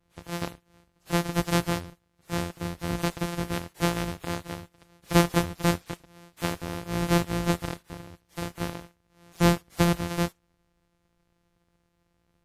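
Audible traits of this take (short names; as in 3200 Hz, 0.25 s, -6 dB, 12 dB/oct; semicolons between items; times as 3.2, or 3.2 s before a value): a buzz of ramps at a fixed pitch in blocks of 256 samples; WMA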